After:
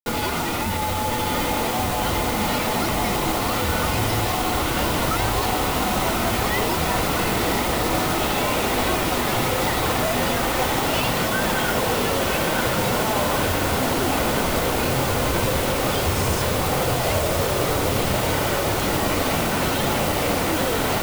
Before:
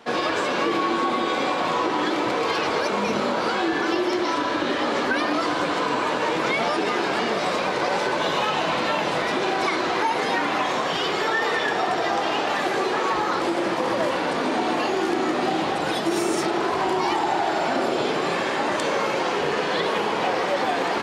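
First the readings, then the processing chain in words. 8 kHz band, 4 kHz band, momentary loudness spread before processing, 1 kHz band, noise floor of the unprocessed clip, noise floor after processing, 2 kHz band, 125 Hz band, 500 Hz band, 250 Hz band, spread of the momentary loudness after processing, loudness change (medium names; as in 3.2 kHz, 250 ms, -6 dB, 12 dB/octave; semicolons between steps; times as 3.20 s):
+11.0 dB, +2.5 dB, 1 LU, -0.5 dB, -25 dBFS, -24 dBFS, 0.0 dB, +13.5 dB, 0.0 dB, +1.0 dB, 1 LU, +1.5 dB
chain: bass shelf 150 Hz -11.5 dB; band-stop 1.9 kHz, Q 14; peak limiter -19.5 dBFS, peak gain reduction 8.5 dB; modulation noise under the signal 11 dB; frequency shift -250 Hz; bit crusher 6-bit; echo that smears into a reverb 1037 ms, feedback 78%, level -5 dB; trim +3.5 dB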